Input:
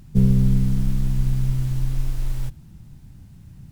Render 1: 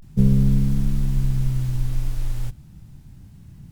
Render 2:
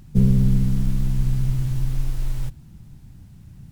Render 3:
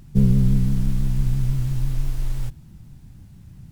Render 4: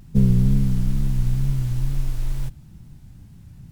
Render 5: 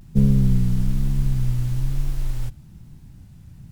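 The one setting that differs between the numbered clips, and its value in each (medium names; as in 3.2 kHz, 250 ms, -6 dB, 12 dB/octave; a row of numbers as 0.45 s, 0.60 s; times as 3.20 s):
vibrato, rate: 0.33 Hz, 15 Hz, 6 Hz, 2.2 Hz, 1.1 Hz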